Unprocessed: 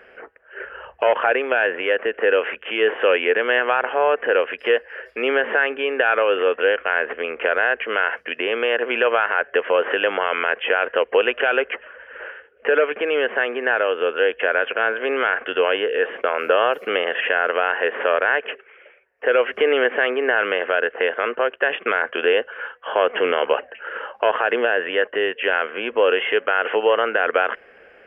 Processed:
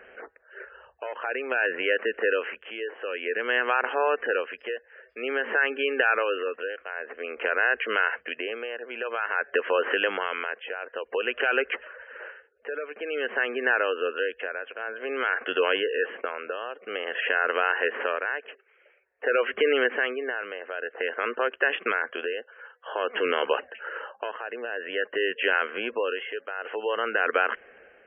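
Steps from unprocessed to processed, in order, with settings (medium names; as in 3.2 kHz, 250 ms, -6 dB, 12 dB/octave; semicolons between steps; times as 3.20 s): tremolo 0.51 Hz, depth 78%; dynamic bell 640 Hz, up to -6 dB, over -32 dBFS, Q 1.5; spectral gate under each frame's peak -25 dB strong; trim -2 dB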